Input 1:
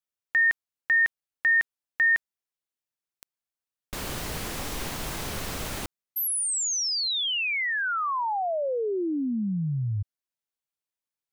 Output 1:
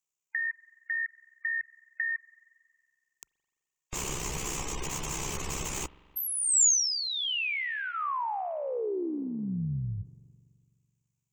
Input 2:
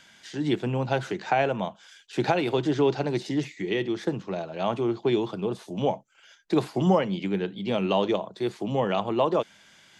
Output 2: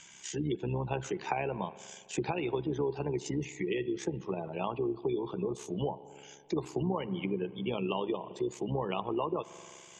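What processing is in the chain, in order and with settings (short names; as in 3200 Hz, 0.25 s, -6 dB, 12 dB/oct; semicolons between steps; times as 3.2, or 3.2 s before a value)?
spectral gate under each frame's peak -25 dB strong; ripple EQ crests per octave 0.73, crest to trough 8 dB; spring tank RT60 2 s, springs 42 ms, chirp 30 ms, DRR 19.5 dB; compressor 4:1, threshold -28 dBFS; notch 1400 Hz, Q 27; AM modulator 66 Hz, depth 35%; bell 7100 Hz +10.5 dB 0.54 oct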